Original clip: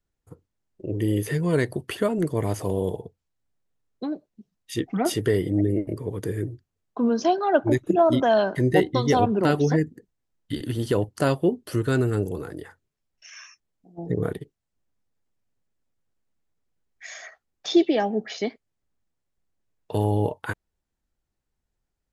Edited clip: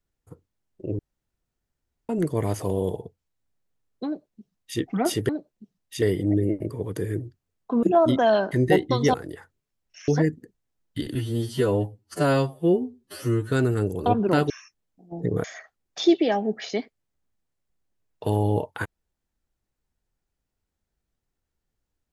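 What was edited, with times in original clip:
0.99–2.09 room tone
4.06–4.79 copy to 5.29
7.1–7.87 cut
9.18–9.62 swap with 12.42–13.36
10.69–11.87 stretch 2×
14.3–17.12 cut

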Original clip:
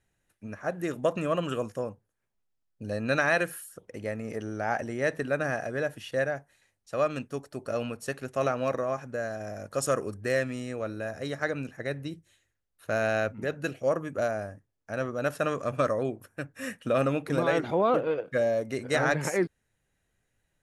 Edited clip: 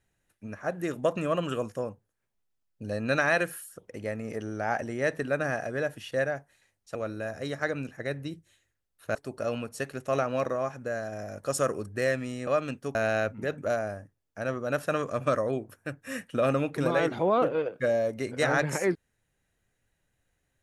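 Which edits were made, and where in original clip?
6.95–7.43 swap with 10.75–12.95
13.58–14.1 cut

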